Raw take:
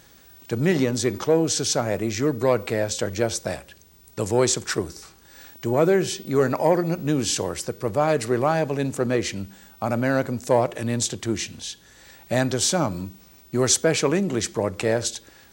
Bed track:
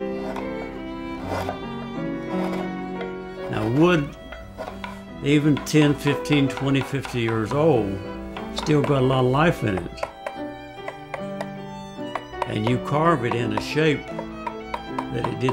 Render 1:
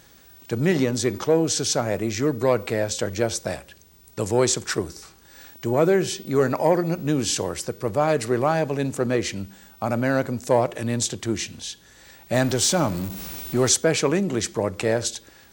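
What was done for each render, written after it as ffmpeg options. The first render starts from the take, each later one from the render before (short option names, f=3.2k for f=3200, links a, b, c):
-filter_complex "[0:a]asettb=1/sr,asplit=3[a][b][c];[a]atrim=end=12.344[d];[b]atrim=start=12.34:end=13.69,asetpts=PTS-STARTPTS,afade=t=in:d=0.004:c=qsin,afade=t=out:st=1.346:d=0.004:c=qsin,aeval=exprs='val(0)+0.5*0.0316*sgn(val(0))':c=same[e];[c]atrim=start=13.686[f];[d][e]acrossfade=d=0.004:c1=hsin:c2=qsin[g];[g][f]acrossfade=d=0.004:c1=qsin:c2=hsin"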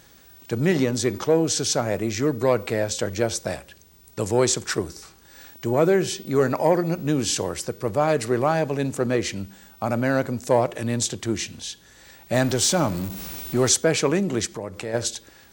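-filter_complex "[0:a]asplit=3[a][b][c];[a]afade=t=out:st=14.45:d=0.02[d];[b]acompressor=threshold=-33dB:ratio=2:attack=3.2:release=140:knee=1:detection=peak,afade=t=in:st=14.45:d=0.02,afade=t=out:st=14.93:d=0.02[e];[c]afade=t=in:st=14.93:d=0.02[f];[d][e][f]amix=inputs=3:normalize=0"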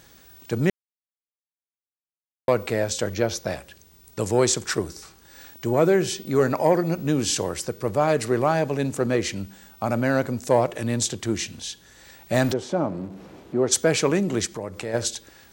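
-filter_complex "[0:a]asettb=1/sr,asplit=3[a][b][c];[a]atrim=end=3.134[d];[b]atrim=start=3.13:end=3.57,asetpts=PTS-STARTPTS,afade=t=in:d=0.004:c=qsin,afade=t=out:st=0.436:d=0.004:c=qsin,equalizer=f=8.3k:t=o:w=0.31:g=-14.5[e];[c]atrim=start=3.566[f];[d][e]acrossfade=d=0.004:c1=hsin:c2=qsin[g];[g][f]acrossfade=d=0.004:c1=qsin:c2=hsin,asplit=3[h][i][j];[h]afade=t=out:st=12.52:d=0.02[k];[i]bandpass=f=410:t=q:w=0.74,afade=t=in:st=12.52:d=0.02,afade=t=out:st=13.71:d=0.02[l];[j]afade=t=in:st=13.71:d=0.02[m];[k][l][m]amix=inputs=3:normalize=0,asplit=3[n][o][p];[n]atrim=end=0.7,asetpts=PTS-STARTPTS,afade=t=out:st=0.696:d=0.004:c=hsin[q];[o]atrim=start=0.7:end=2.48,asetpts=PTS-STARTPTS,volume=0[r];[p]atrim=start=2.48,asetpts=PTS-STARTPTS,afade=t=in:d=0.004:c=hsin[s];[q][r][s]concat=n=3:v=0:a=1"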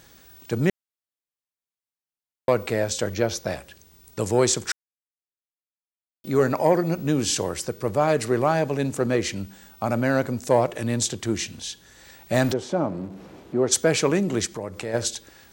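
-filter_complex "[0:a]asplit=3[a][b][c];[a]atrim=end=4.72,asetpts=PTS-STARTPTS,afade=t=out:st=4.716:d=0.004:c=hsin[d];[b]atrim=start=4.72:end=6.24,asetpts=PTS-STARTPTS,volume=0[e];[c]atrim=start=6.24,asetpts=PTS-STARTPTS,afade=t=in:d=0.004:c=hsin[f];[d][e][f]concat=n=3:v=0:a=1"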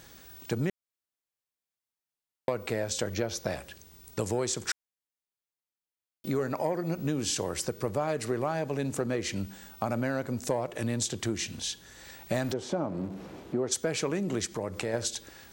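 -af "acompressor=threshold=-27dB:ratio=5"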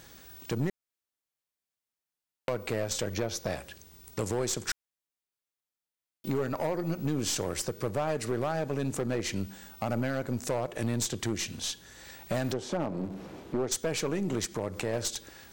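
-af "aeval=exprs='0.237*(cos(1*acos(clip(val(0)/0.237,-1,1)))-cos(1*PI/2))+0.0422*(cos(6*acos(clip(val(0)/0.237,-1,1)))-cos(6*PI/2))+0.0133*(cos(8*acos(clip(val(0)/0.237,-1,1)))-cos(8*PI/2))':c=same,aeval=exprs='clip(val(0),-1,0.0794)':c=same"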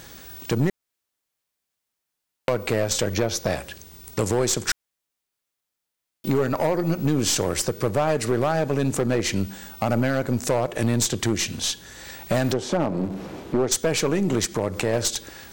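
-af "volume=8.5dB"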